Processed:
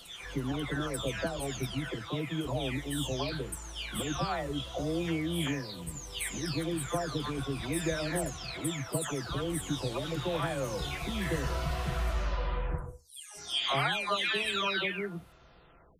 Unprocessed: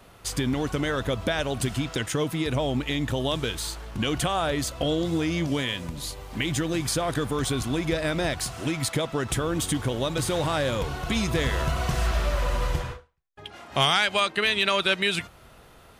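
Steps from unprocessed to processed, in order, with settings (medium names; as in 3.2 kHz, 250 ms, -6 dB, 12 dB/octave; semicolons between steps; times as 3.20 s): delay that grows with frequency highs early, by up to 673 ms; trim -5.5 dB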